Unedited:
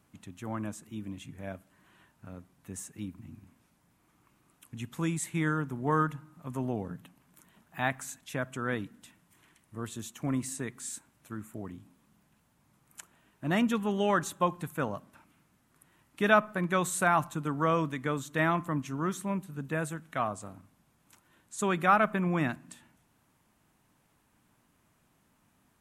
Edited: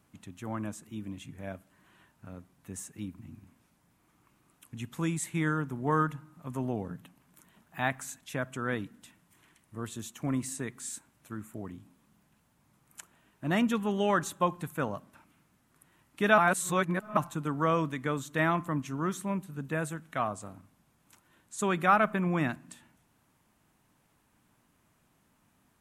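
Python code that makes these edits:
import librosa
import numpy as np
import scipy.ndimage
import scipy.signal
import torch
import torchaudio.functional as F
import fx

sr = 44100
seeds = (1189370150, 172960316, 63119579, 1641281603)

y = fx.edit(x, sr, fx.reverse_span(start_s=16.38, length_s=0.79), tone=tone)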